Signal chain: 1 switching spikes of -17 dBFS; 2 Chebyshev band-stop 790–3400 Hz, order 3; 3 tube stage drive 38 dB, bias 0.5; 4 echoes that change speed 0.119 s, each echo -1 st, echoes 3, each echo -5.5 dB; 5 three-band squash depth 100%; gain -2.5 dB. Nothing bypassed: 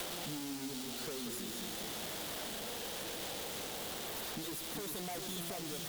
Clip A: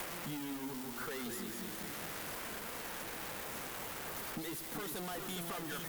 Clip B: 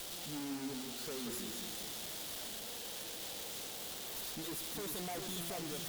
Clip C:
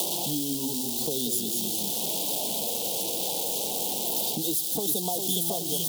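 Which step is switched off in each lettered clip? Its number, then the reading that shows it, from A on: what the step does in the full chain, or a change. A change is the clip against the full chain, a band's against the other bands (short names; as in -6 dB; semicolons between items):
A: 2, 4 kHz band -5.5 dB; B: 5, momentary loudness spread change +2 LU; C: 3, crest factor change +4.5 dB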